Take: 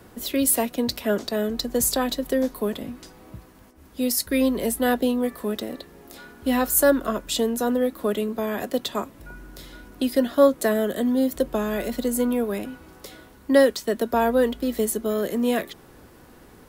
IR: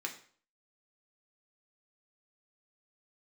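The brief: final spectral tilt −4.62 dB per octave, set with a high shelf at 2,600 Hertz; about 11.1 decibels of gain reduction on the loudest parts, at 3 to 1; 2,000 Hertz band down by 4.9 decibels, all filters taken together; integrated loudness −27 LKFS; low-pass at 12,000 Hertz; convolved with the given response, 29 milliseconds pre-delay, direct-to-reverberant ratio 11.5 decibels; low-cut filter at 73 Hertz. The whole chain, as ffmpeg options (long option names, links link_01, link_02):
-filter_complex "[0:a]highpass=73,lowpass=12000,equalizer=frequency=2000:width_type=o:gain=-3,highshelf=frequency=2600:gain=-8,acompressor=threshold=-27dB:ratio=3,asplit=2[link_01][link_02];[1:a]atrim=start_sample=2205,adelay=29[link_03];[link_02][link_03]afir=irnorm=-1:irlink=0,volume=-13dB[link_04];[link_01][link_04]amix=inputs=2:normalize=0,volume=3.5dB"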